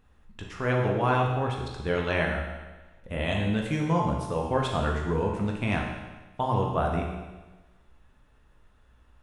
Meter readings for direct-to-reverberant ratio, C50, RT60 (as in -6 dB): -0.5 dB, 3.0 dB, 1.2 s